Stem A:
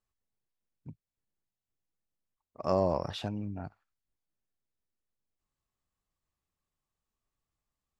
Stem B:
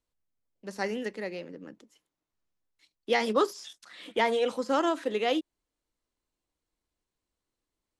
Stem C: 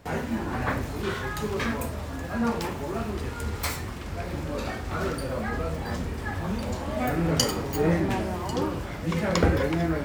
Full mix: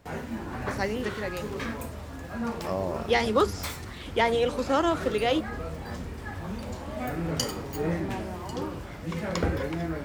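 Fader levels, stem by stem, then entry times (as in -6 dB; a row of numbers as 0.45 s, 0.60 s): -3.0 dB, +2.0 dB, -5.5 dB; 0.00 s, 0.00 s, 0.00 s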